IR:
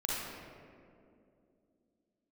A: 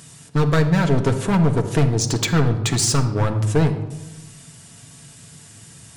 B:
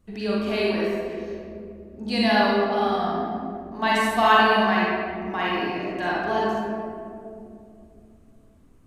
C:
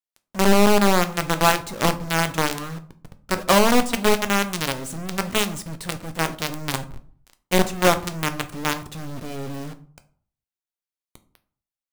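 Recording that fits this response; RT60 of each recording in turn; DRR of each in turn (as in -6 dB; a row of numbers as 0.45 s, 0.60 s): B; 1.1 s, 2.5 s, 0.50 s; 3.5 dB, -6.0 dB, 9.0 dB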